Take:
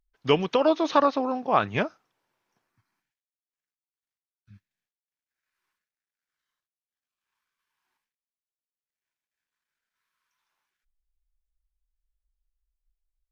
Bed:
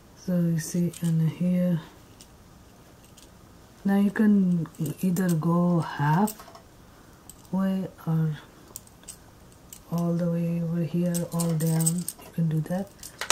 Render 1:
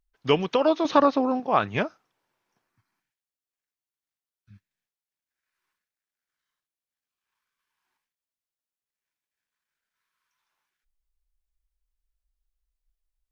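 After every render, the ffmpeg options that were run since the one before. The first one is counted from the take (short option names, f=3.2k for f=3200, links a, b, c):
-filter_complex "[0:a]asettb=1/sr,asplit=3[a][b][c];[a]atrim=end=0.854[d];[b]atrim=start=0.85:end=1.4,asetpts=PTS-STARTPTS,afade=t=in:d=0.004:c=qsin,afade=t=out:st=0.546:d=0.004:c=qsin,lowshelf=f=350:g=7.5[e];[c]atrim=start=1.396[f];[d][e]acrossfade=d=0.004:c1=hsin:c2=qsin[g];[g][f]acrossfade=d=0.004:c1=qsin:c2=hsin"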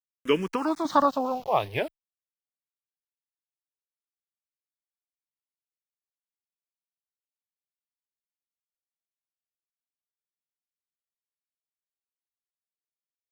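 -filter_complex "[0:a]aeval=exprs='val(0)*gte(abs(val(0)),0.0119)':c=same,asplit=2[a][b];[b]afreqshift=-0.49[c];[a][c]amix=inputs=2:normalize=1"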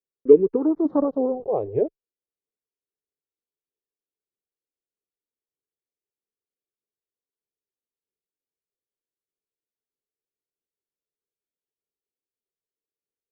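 -af "aphaser=in_gain=1:out_gain=1:delay=3.9:decay=0.29:speed=1.6:type=sinusoidal,lowpass=f=430:t=q:w=4.9"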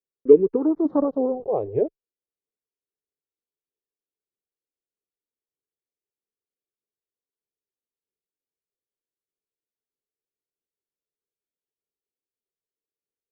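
-af anull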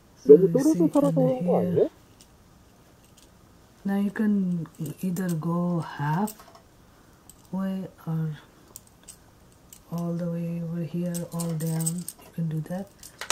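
-filter_complex "[1:a]volume=-3.5dB[a];[0:a][a]amix=inputs=2:normalize=0"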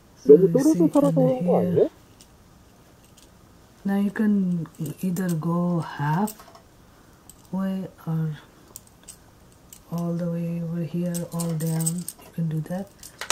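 -af "volume=2.5dB,alimiter=limit=-2dB:level=0:latency=1"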